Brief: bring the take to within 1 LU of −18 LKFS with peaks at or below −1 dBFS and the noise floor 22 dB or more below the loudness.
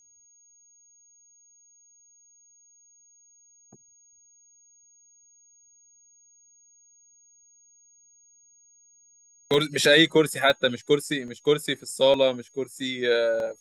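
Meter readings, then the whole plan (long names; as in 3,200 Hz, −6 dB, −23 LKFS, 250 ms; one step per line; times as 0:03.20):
number of dropouts 5; longest dropout 1.5 ms; interfering tone 6,600 Hz; level of the tone −56 dBFS; integrated loudness −23.0 LKFS; sample peak −6.5 dBFS; target loudness −18.0 LKFS
→ repair the gap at 0:09.54/0:10.50/0:11.28/0:12.14/0:13.40, 1.5 ms
notch filter 6,600 Hz, Q 30
level +5 dB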